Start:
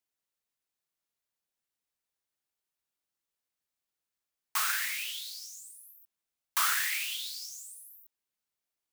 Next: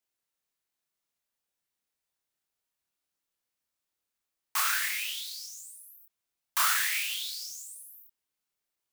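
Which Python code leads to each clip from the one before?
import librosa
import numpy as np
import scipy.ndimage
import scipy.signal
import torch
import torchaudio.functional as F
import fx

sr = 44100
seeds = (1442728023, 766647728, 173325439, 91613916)

y = fx.doubler(x, sr, ms=28.0, db=-2)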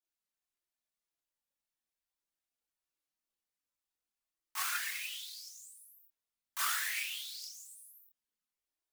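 y = fx.chorus_voices(x, sr, voices=6, hz=0.28, base_ms=22, depth_ms=3.3, mix_pct=65)
y = F.gain(torch.from_numpy(y), -4.5).numpy()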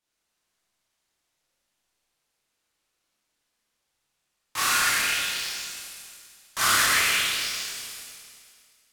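y = fx.rev_schroeder(x, sr, rt60_s=2.1, comb_ms=26, drr_db=-5.0)
y = np.interp(np.arange(len(y)), np.arange(len(y))[::2], y[::2])
y = F.gain(torch.from_numpy(y), 9.0).numpy()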